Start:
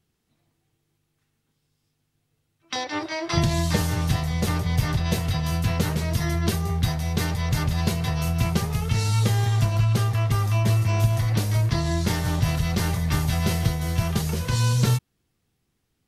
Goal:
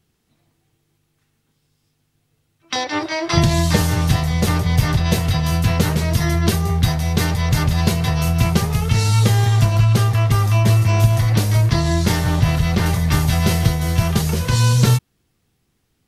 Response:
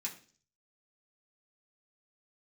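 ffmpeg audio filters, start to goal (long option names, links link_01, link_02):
-filter_complex "[0:a]asettb=1/sr,asplit=3[link_01][link_02][link_03];[link_01]atrim=end=12.244[link_04];[link_02]atrim=start=12.24:end=12.86,asetpts=PTS-STARTPTS,afade=type=in:duration=0.004:curve=qsin,afade=type=out:start_time=0.616:duration=0.004:curve=qsin,acrossover=split=4000[link_05][link_06];[link_06]acompressor=threshold=-41dB:ratio=4:attack=1:release=60[link_07];[link_05][link_07]amix=inputs=2:normalize=0[link_08];[link_03]atrim=start=12.856[link_09];[link_04][link_08]acrossfade=duration=0.004:curve1=hsin:curve2=qsin[link_10];[link_10][link_09]acrossfade=duration=0.004:curve1=qsin:curve2=hsin,volume=6.5dB"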